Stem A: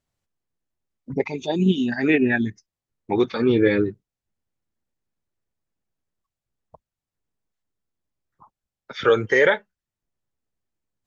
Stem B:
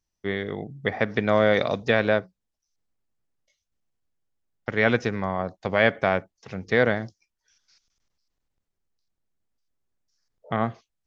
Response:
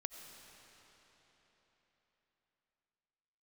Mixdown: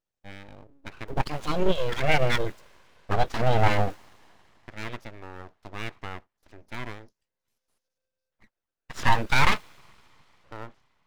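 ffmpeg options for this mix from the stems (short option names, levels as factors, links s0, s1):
-filter_complex "[0:a]agate=range=0.398:threshold=0.00398:ratio=16:detection=peak,highshelf=f=5800:g=-9.5,aeval=exprs='val(0)*sgn(sin(2*PI*520*n/s))':c=same,volume=0.944,asplit=3[s0][s1][s2];[s1]volume=0.0841[s3];[1:a]volume=0.211[s4];[s2]apad=whole_len=487864[s5];[s4][s5]sidechaincompress=threshold=0.00708:ratio=3:attack=24:release=407[s6];[2:a]atrim=start_sample=2205[s7];[s3][s7]afir=irnorm=-1:irlink=0[s8];[s0][s6][s8]amix=inputs=3:normalize=0,aeval=exprs='abs(val(0))':c=same"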